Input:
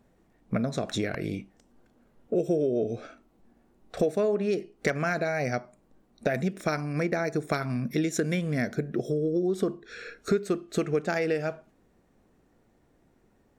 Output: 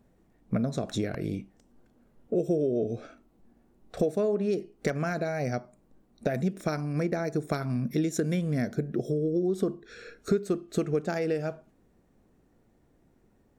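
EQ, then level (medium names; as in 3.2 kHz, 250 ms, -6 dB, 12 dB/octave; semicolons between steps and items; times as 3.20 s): dynamic bell 2.1 kHz, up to -4 dB, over -48 dBFS, Q 1.4; bass shelf 460 Hz +5.5 dB; treble shelf 7.9 kHz +4 dB; -4.0 dB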